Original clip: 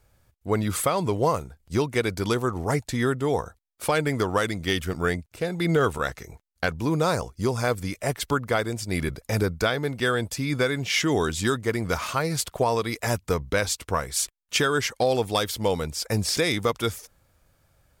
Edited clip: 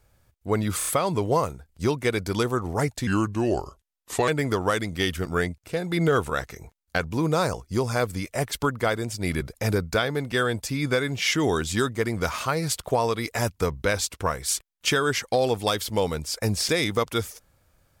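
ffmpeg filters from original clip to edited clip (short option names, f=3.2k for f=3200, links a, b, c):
-filter_complex "[0:a]asplit=6[a][b][c][d][e][f];[a]atrim=end=0.812[g];[b]atrim=start=0.778:end=0.812[h];[c]atrim=start=0.778:end=0.812[i];[d]atrim=start=0.778:end=2.984[j];[e]atrim=start=2.98:end=3.96,asetpts=PTS-STARTPTS,asetrate=35721,aresample=44100[k];[f]atrim=start=3.956[l];[g][h]acrossfade=d=0.004:c1=hsin:c2=hsin[m];[m][i]acrossfade=d=0.004:c1=hsin:c2=hsin[n];[n][j]acrossfade=d=0.004:c1=hsin:c2=hsin[o];[o][k]acrossfade=d=0.004:c1=hsin:c2=hsin[p];[p][l]acrossfade=d=0.004:c1=hsin:c2=hsin"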